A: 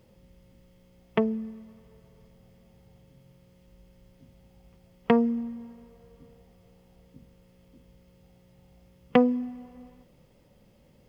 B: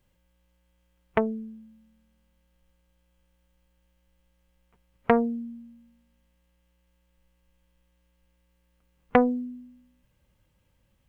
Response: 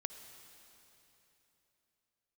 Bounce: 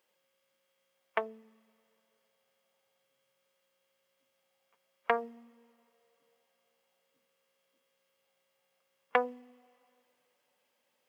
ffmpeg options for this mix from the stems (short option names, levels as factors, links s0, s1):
-filter_complex "[0:a]flanger=delay=2:depth=7.3:regen=-61:speed=1.4:shape=triangular,volume=0.355,asplit=2[s0][s1];[s1]volume=0.299[s2];[1:a]volume=0.708[s3];[2:a]atrim=start_sample=2205[s4];[s2][s4]afir=irnorm=-1:irlink=0[s5];[s0][s3][s5]amix=inputs=3:normalize=0,highpass=740"